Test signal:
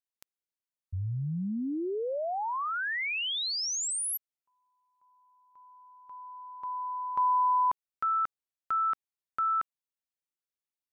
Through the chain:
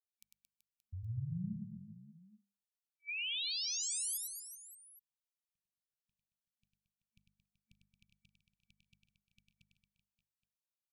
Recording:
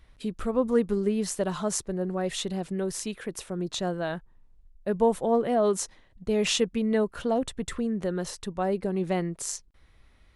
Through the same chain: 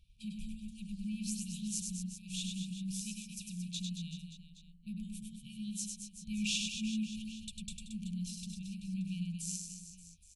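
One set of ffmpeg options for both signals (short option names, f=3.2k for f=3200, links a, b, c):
-filter_complex "[0:a]afftfilt=real='re*(1-between(b*sr/4096,220,2300))':imag='im*(1-between(b*sr/4096,220,2300))':win_size=4096:overlap=0.75,bandreject=f=50:t=h:w=6,bandreject=f=100:t=h:w=6,bandreject=f=150:t=h:w=6,bandreject=f=200:t=h:w=6,bandreject=f=250:t=h:w=6,bandreject=f=300:t=h:w=6,asplit=2[a][b];[b]aecho=0:1:100|225|381.2|576.6|820.7:0.631|0.398|0.251|0.158|0.1[c];[a][c]amix=inputs=2:normalize=0,volume=-8dB"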